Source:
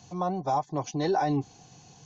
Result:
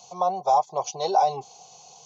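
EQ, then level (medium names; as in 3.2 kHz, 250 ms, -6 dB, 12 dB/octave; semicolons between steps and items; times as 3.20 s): high-pass 390 Hz 12 dB/octave; static phaser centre 710 Hz, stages 4; band-stop 1.8 kHz, Q 22; +8.0 dB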